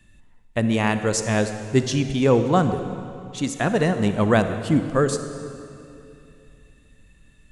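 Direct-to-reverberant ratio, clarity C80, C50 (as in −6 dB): 8.5 dB, 9.5 dB, 9.0 dB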